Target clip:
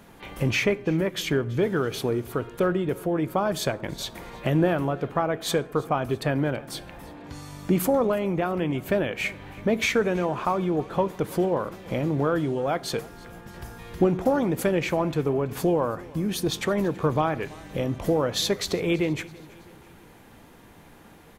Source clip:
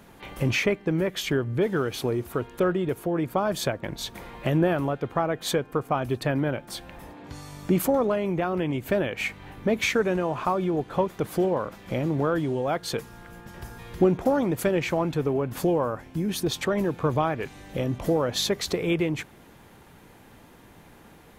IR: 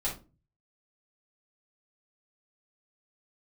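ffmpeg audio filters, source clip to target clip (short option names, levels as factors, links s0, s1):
-filter_complex "[0:a]aecho=1:1:329|658|987:0.075|0.0367|0.018,asplit=2[s0][s1];[1:a]atrim=start_sample=2205,asetrate=24255,aresample=44100[s2];[s1][s2]afir=irnorm=-1:irlink=0,volume=0.0596[s3];[s0][s3]amix=inputs=2:normalize=0"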